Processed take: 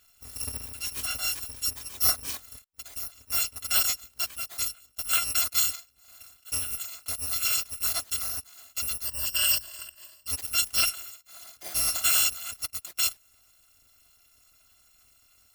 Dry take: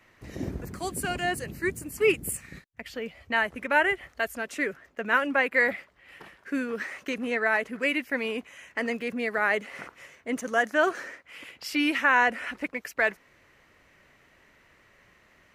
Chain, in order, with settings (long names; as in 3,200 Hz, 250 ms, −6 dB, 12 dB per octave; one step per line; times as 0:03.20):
samples in bit-reversed order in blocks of 256 samples
0:09.05–0:10.28: EQ curve with evenly spaced ripples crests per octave 1.3, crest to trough 13 dB
level −1.5 dB